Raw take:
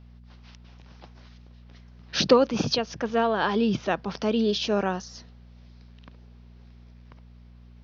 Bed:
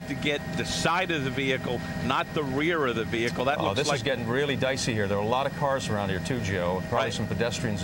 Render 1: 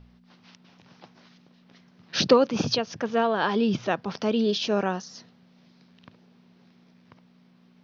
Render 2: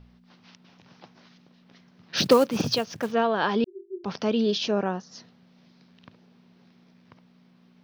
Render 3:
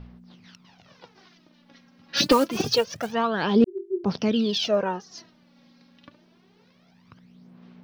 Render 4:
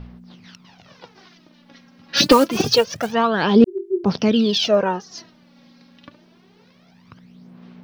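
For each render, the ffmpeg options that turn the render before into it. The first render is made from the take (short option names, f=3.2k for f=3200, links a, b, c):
-af "bandreject=f=60:t=h:w=4,bandreject=f=120:t=h:w=4"
-filter_complex "[0:a]asplit=3[a][b][c];[a]afade=t=out:st=2.16:d=0.02[d];[b]acrusher=bits=5:mode=log:mix=0:aa=0.000001,afade=t=in:st=2.16:d=0.02,afade=t=out:st=3.11:d=0.02[e];[c]afade=t=in:st=3.11:d=0.02[f];[d][e][f]amix=inputs=3:normalize=0,asettb=1/sr,asplit=3[g][h][i];[g]atrim=end=3.644[j];[h]atrim=start=3.64:end=4.04,asetpts=PTS-STARTPTS,afade=t=in:d=0.004:c=qsin,afade=t=out:st=0.396:d=0.004:c=qsin,asuperpass=centerf=370:order=20:qfactor=7.5[k];[i]atrim=start=4.036[l];[j][k]acrossfade=d=0.004:c1=hsin:c2=qsin[m];[m][l]acrossfade=d=0.004:c1=qsin:c2=hsin,asplit=3[n][o][p];[n]afade=t=out:st=4.7:d=0.02[q];[o]highshelf=f=2.2k:g=-11,afade=t=in:st=4.7:d=0.02,afade=t=out:st=5.11:d=0.02[r];[p]afade=t=in:st=5.11:d=0.02[s];[q][r][s]amix=inputs=3:normalize=0"
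-af "aphaser=in_gain=1:out_gain=1:delay=3.7:decay=0.64:speed=0.26:type=sinusoidal,asoftclip=type=hard:threshold=-8.5dB"
-af "volume=6dB"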